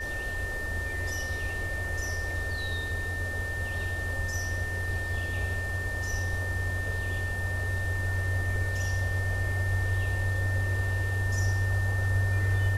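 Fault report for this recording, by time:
whine 1.8 kHz -33 dBFS

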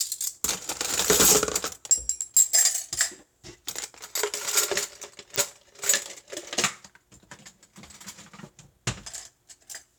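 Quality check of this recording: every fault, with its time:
2.21–2.22 s: dropout 8.4 ms
5.36 s: pop -7 dBFS

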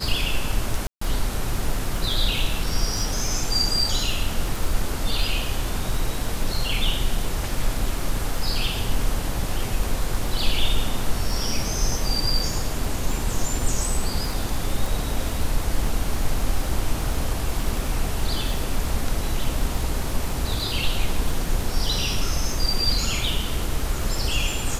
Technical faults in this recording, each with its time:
crackle 19 per s -25 dBFS
0.87–1.01 s: dropout 144 ms

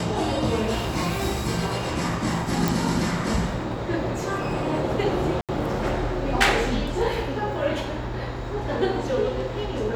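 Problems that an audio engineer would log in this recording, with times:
2.68 s: pop
5.41–5.49 s: dropout 77 ms

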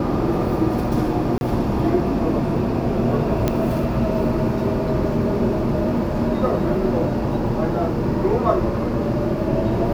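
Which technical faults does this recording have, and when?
1.38–1.41 s: dropout 31 ms
3.48 s: pop -6 dBFS

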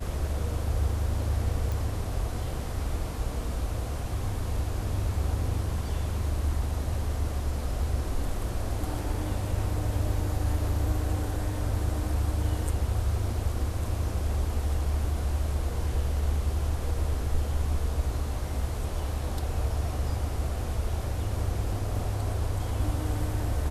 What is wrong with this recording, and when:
1.72 s: pop

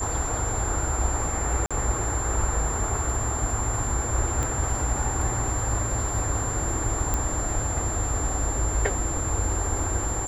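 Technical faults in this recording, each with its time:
whine 7.3 kHz -30 dBFS
1.66–1.71 s: dropout 46 ms
4.43 s: pop -15 dBFS
7.14 s: pop -12 dBFS

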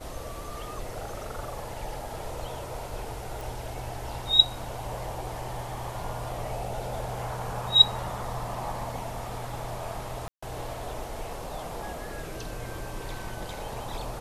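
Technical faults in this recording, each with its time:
3.41 s: pop
10.28–10.43 s: dropout 145 ms

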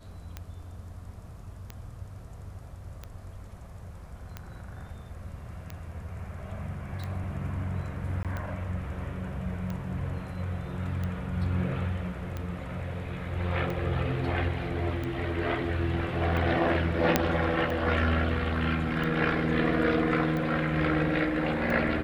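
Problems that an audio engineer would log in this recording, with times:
tick 45 rpm -22 dBFS
8.23–8.25 s: dropout 17 ms
17.16 s: pop -5 dBFS

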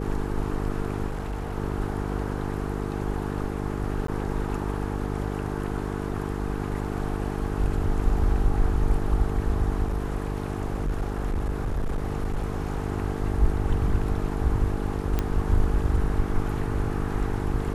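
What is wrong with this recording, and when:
buzz 50 Hz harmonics 9 -30 dBFS
1.07–1.56 s: clipped -26.5 dBFS
4.07–4.08 s: dropout 13 ms
9.86–12.84 s: clipped -22.5 dBFS
15.19 s: pop -12 dBFS

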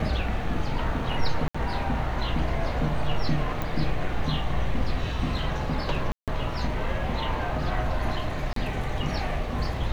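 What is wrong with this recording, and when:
1.48–1.54 s: dropout 65 ms
3.62 s: pop -16 dBFS
6.12–6.28 s: dropout 157 ms
8.53–8.56 s: dropout 33 ms

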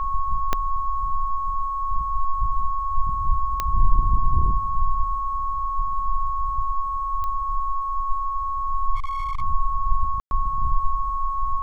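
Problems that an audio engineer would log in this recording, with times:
whine 1.1 kHz -24 dBFS
0.53 s: pop -7 dBFS
3.60 s: pop -9 dBFS
7.24 s: pop -17 dBFS
8.95–9.42 s: clipped -22 dBFS
10.20–10.31 s: dropout 111 ms

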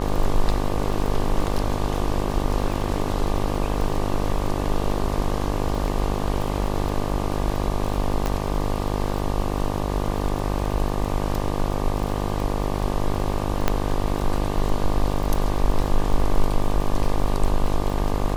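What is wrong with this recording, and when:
buzz 50 Hz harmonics 24 -26 dBFS
crackle 31 per s -27 dBFS
8.26 s: pop -10 dBFS
13.68 s: pop -5 dBFS

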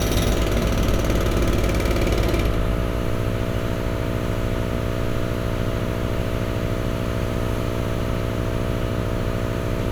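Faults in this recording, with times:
buzz 60 Hz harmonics 11 -27 dBFS

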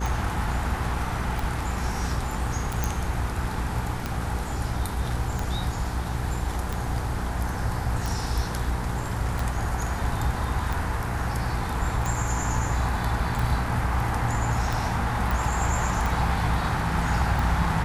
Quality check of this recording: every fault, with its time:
hum 60 Hz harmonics 8 -31 dBFS
tick 45 rpm
2.84 s: pop
15.31 s: pop

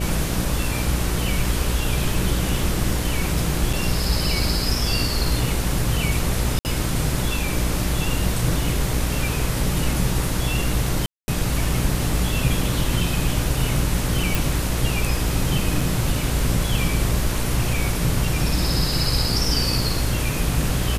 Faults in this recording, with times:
buzz 60 Hz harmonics 10 -26 dBFS
3.73 s: dropout 4.8 ms
6.59–6.65 s: dropout 59 ms
11.06–11.28 s: dropout 220 ms
14.35 s: pop
15.81 s: dropout 4.1 ms

